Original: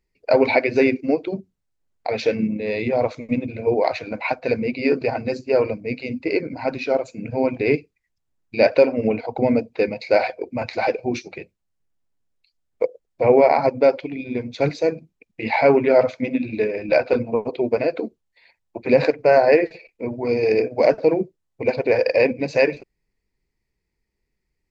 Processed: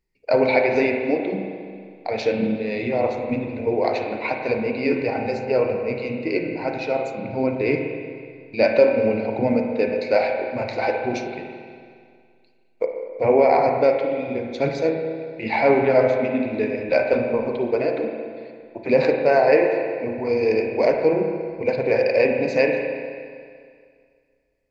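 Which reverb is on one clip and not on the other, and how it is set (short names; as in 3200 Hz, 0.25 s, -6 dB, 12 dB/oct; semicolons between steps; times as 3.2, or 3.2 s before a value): spring tank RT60 2.1 s, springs 31/46 ms, chirp 30 ms, DRR 2 dB; gain -2.5 dB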